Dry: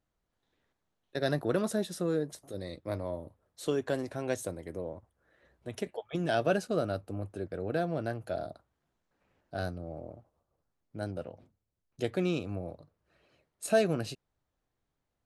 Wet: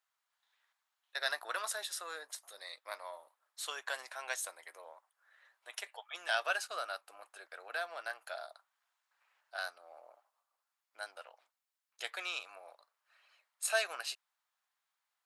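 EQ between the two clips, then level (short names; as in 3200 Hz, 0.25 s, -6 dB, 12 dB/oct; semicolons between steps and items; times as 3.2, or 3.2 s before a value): HPF 940 Hz 24 dB/oct; notch 6000 Hz, Q 28; +3.5 dB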